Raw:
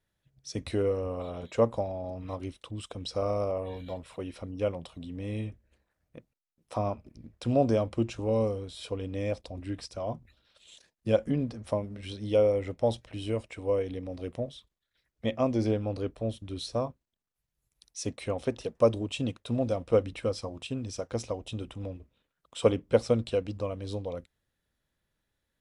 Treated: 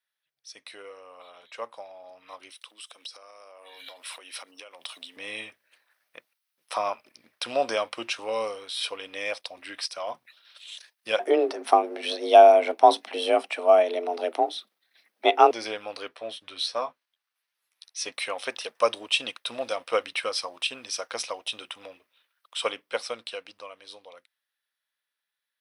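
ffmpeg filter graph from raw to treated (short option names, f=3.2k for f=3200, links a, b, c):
-filter_complex "[0:a]asettb=1/sr,asplit=3[a][b][c];[a]atrim=end=2.504[d];[b]atrim=start=2.5:end=5.17,asetpts=PTS-STARTPTS,afade=t=in:d=0.004:c=qsin,afade=t=out:st=2.666:d=0.004:c=qsin,highpass=f=220:w=0.5412,highpass=f=220:w=1.3066,highshelf=f=3.7k:g=9,acompressor=threshold=-43dB:ratio=16:attack=3.2:release=140:knee=1:detection=peak[e];[c]atrim=start=5.166[f];[d][e]acrossfade=d=0.004:c1=hsin:c2=qsin[g];[g][f]acrossfade=d=0.004:c1=qsin:c2=hsin,asettb=1/sr,asplit=3[h][i][j];[h]atrim=end=11.194[k];[i]atrim=start=11.19:end=15.51,asetpts=PTS-STARTPTS,afade=t=in:d=0.004:c=qsin,afade=t=out:st=4.316:d=0.004:c=qsin,afreqshift=160,equalizer=f=370:w=0.56:g=14.5[l];[j]atrim=start=15.506[m];[k][l]acrossfade=d=0.004:c1=hsin:c2=qsin[n];[n][m]acrossfade=d=0.004:c1=qsin:c2=hsin,asettb=1/sr,asplit=3[o][p][q];[o]atrim=end=16.084[r];[p]atrim=start=16.08:end=18.12,asetpts=PTS-STARTPTS,afade=t=in:d=0.004:c=qsin,afade=t=out:st=2.036:d=0.004:c=qsin,lowpass=f=3.9k:p=1,asplit=2[s][t];[t]adelay=12,volume=-6.5dB[u];[s][u]amix=inputs=2:normalize=0,atrim=end_sample=89964[v];[q]atrim=start=18.116[w];[r][v]acrossfade=d=0.004:c1=hsin:c2=qsin[x];[x][w]acrossfade=d=0.004:c1=qsin:c2=hsin,highpass=1.3k,equalizer=f=7.1k:w=4:g=-13,dynaudnorm=f=220:g=31:m=15dB"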